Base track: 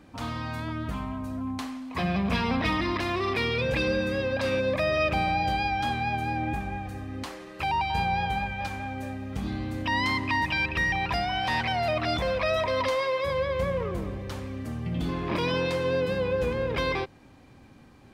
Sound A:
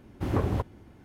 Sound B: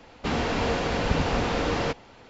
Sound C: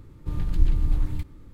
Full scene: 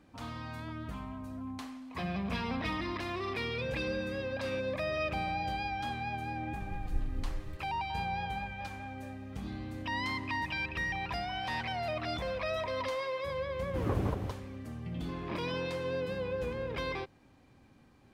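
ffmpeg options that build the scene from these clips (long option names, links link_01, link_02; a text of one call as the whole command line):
ffmpeg -i bed.wav -i cue0.wav -i cue1.wav -i cue2.wav -filter_complex "[0:a]volume=-8.5dB[link_01];[1:a]aecho=1:1:167:0.668[link_02];[3:a]atrim=end=1.53,asetpts=PTS-STARTPTS,volume=-14dB,afade=type=in:duration=0.004:curve=hsin,afade=type=out:start_time=1.526:duration=0.004:curve=hsin,adelay=279594S[link_03];[link_02]atrim=end=1.04,asetpts=PTS-STARTPTS,volume=-6dB,afade=type=in:duration=0.004:curve=hsin,afade=type=out:start_time=1.036:duration=0.004:curve=hsin,adelay=13530[link_04];[link_01][link_03][link_04]amix=inputs=3:normalize=0" out.wav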